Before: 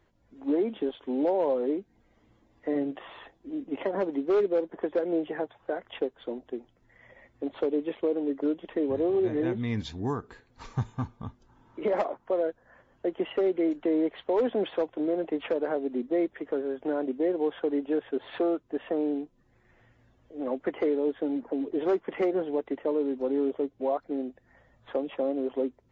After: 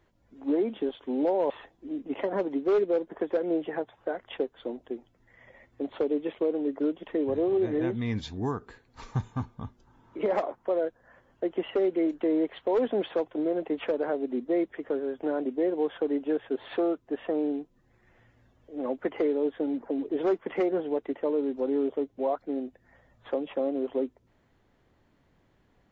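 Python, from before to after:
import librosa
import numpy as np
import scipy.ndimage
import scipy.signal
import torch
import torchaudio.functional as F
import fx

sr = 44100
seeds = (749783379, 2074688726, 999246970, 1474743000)

y = fx.edit(x, sr, fx.cut(start_s=1.5, length_s=1.62), tone=tone)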